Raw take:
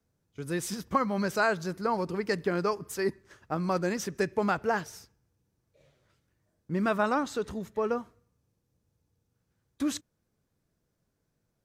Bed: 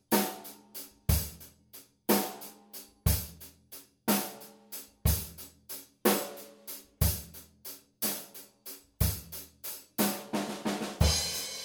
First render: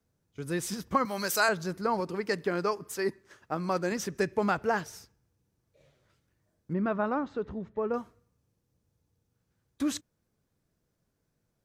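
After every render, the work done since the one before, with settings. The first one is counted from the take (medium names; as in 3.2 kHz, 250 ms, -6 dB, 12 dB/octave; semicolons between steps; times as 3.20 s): 1.05–1.49 s: RIAA curve recording; 2.00–3.92 s: bass shelf 120 Hz -11 dB; 6.73–7.94 s: tape spacing loss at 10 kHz 37 dB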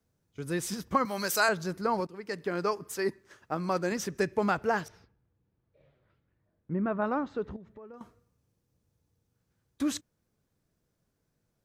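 2.07–2.68 s: fade in, from -15 dB; 4.88–7.02 s: distance through air 350 m; 7.56–8.01 s: compression 5:1, threshold -47 dBFS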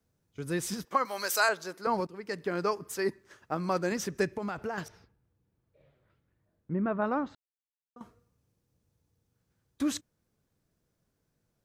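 0.85–1.87 s: high-pass 440 Hz; 4.28–4.78 s: compression 12:1, threshold -30 dBFS; 7.35–7.96 s: mute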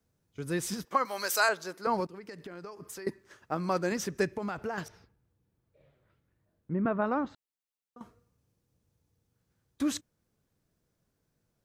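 2.17–3.07 s: compression 20:1, threshold -39 dBFS; 6.85–7.25 s: three bands compressed up and down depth 70%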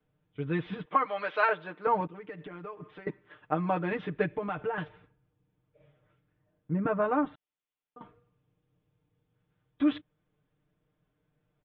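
Chebyshev low-pass 3.5 kHz, order 6; comb 6.6 ms, depth 87%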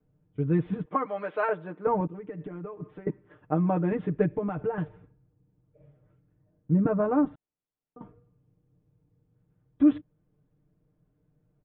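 low-pass 2.8 kHz 12 dB/octave; tilt shelf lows +8.5 dB, about 730 Hz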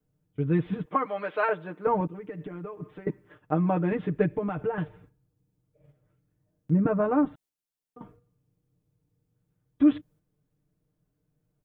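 gate -55 dBFS, range -6 dB; treble shelf 2.4 kHz +10.5 dB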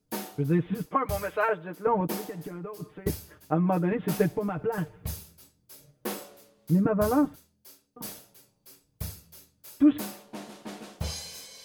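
add bed -8 dB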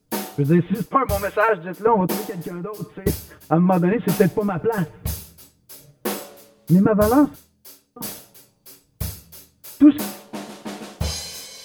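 trim +8 dB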